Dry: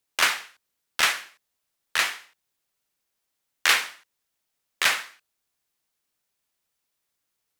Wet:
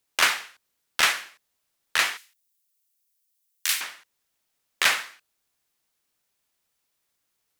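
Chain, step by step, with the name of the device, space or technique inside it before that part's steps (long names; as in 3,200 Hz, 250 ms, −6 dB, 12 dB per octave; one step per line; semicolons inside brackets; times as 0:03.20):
parallel compression (in parallel at −8 dB: downward compressor, threshold −31 dBFS, peak gain reduction 15.5 dB)
0:02.17–0:03.81: on the sum: first difference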